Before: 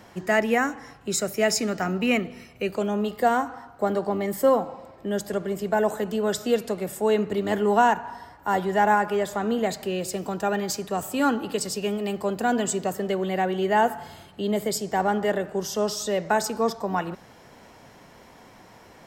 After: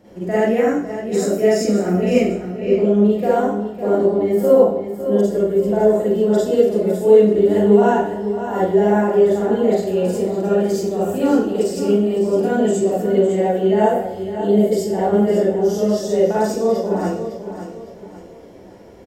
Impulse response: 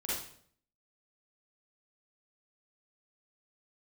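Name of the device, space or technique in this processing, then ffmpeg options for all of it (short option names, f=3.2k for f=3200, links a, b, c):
bathroom: -filter_complex "[0:a]aecho=1:1:557|1114|1671|2228:0.299|0.107|0.0387|0.0139,asettb=1/sr,asplit=3[a][b][c];[a]atrim=end=2.284[d];[b]atrim=start=2.28:end=2.97,asetpts=PTS-STARTPTS,afade=t=in:d=0.004:c=qsin,afade=t=out:st=0.686:d=0.004:c=qsin,acrossover=split=4400[e][f];[f]acompressor=threshold=-59dB:ratio=4:attack=1:release=60[g];[e][g]amix=inputs=2:normalize=0[h];[c]atrim=start=2.966[i];[d][h]acrossfade=d=0.004:c1=hsin:c2=qsin[j];[j][i]acrossfade=d=0.004:c1=qsin:c2=hsin[k];[1:a]atrim=start_sample=2205[l];[k][l]afir=irnorm=-1:irlink=0,lowshelf=f=760:t=q:w=1.5:g=9,bandreject=f=50:t=h:w=6,bandreject=f=100:t=h:w=6,bandreject=f=150:t=h:w=6,bandreject=f=200:t=h:w=6,volume=-6dB"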